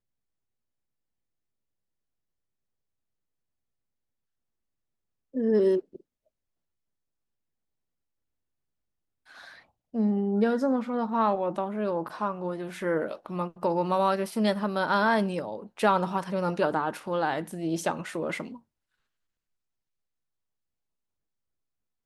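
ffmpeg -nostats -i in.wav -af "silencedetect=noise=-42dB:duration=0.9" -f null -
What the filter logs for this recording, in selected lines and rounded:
silence_start: 0.00
silence_end: 5.34 | silence_duration: 5.34
silence_start: 5.96
silence_end: 9.31 | silence_duration: 3.35
silence_start: 18.57
silence_end: 22.05 | silence_duration: 3.48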